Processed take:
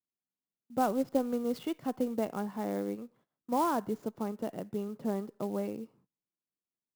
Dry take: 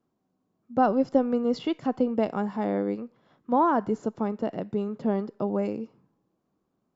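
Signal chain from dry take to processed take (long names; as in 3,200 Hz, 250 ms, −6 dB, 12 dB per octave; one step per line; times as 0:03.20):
noise gate −56 dBFS, range −22 dB
converter with an unsteady clock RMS 0.026 ms
level −7 dB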